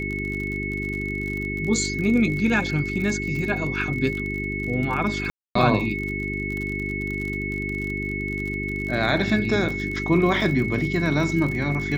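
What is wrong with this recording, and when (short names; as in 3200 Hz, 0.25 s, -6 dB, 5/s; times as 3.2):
crackle 42/s -29 dBFS
hum 50 Hz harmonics 8 -30 dBFS
tone 2200 Hz -29 dBFS
5.3–5.55 gap 0.254 s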